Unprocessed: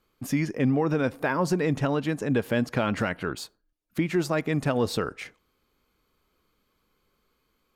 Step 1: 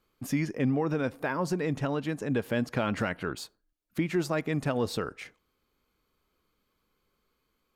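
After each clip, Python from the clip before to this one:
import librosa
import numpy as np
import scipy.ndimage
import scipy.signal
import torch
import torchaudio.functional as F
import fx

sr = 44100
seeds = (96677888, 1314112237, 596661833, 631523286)

y = fx.rider(x, sr, range_db=10, speed_s=2.0)
y = y * librosa.db_to_amplitude(-4.0)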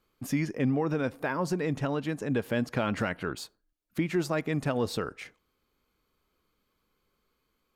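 y = x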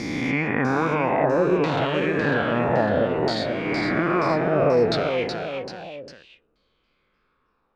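y = fx.spec_swells(x, sr, rise_s=2.62)
y = fx.filter_lfo_lowpass(y, sr, shape='saw_down', hz=0.61, low_hz=390.0, high_hz=4600.0, q=3.2)
y = fx.echo_pitch(y, sr, ms=648, semitones=1, count=3, db_per_echo=-6.0)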